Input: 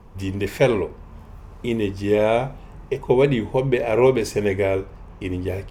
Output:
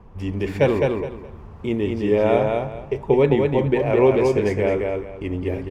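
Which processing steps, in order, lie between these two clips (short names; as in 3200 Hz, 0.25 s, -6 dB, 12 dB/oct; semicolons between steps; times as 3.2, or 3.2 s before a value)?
LPF 2200 Hz 6 dB/oct; on a send: feedback echo 0.211 s, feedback 24%, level -3.5 dB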